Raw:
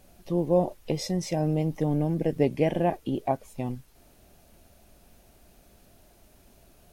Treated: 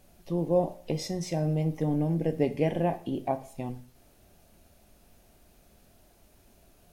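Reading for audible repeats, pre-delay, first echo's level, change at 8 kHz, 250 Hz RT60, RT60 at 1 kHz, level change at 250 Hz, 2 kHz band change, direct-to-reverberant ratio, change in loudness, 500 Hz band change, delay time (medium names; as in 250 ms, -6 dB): no echo, 5 ms, no echo, -2.5 dB, 0.50 s, 0.45 s, -2.0 dB, -2.5 dB, 10.0 dB, -2.0 dB, -2.5 dB, no echo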